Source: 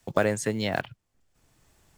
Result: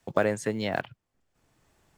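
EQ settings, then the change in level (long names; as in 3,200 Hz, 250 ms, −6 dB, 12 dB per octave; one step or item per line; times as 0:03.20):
low-shelf EQ 120 Hz −7 dB
high-shelf EQ 3,400 Hz −7.5 dB
0.0 dB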